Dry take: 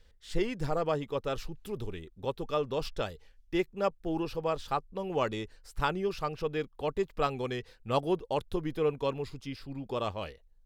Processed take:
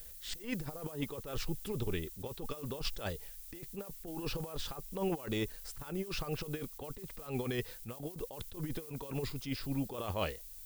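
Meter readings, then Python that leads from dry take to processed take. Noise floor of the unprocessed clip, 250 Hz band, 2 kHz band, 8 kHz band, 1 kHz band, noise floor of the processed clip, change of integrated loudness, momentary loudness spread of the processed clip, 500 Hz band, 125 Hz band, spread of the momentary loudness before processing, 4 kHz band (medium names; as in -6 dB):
-61 dBFS, -4.0 dB, -5.0 dB, +6.0 dB, -12.0 dB, -50 dBFS, -6.0 dB, 8 LU, -9.5 dB, -1.5 dB, 9 LU, -1.5 dB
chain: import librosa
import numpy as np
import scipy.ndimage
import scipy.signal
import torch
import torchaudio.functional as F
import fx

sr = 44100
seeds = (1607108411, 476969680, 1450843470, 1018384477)

y = fx.over_compress(x, sr, threshold_db=-36.0, ratio=-0.5)
y = fx.dmg_noise_colour(y, sr, seeds[0], colour='violet', level_db=-51.0)
y = fx.attack_slew(y, sr, db_per_s=140.0)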